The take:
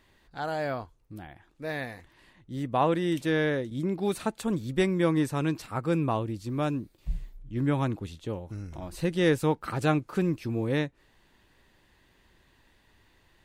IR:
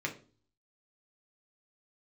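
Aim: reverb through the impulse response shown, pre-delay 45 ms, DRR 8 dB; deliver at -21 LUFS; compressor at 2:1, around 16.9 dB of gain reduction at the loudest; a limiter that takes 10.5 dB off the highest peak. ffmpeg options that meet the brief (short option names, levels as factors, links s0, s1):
-filter_complex "[0:a]acompressor=threshold=0.00251:ratio=2,alimiter=level_in=5.31:limit=0.0631:level=0:latency=1,volume=0.188,asplit=2[s0][s1];[1:a]atrim=start_sample=2205,adelay=45[s2];[s1][s2]afir=irnorm=-1:irlink=0,volume=0.237[s3];[s0][s3]amix=inputs=2:normalize=0,volume=22.4"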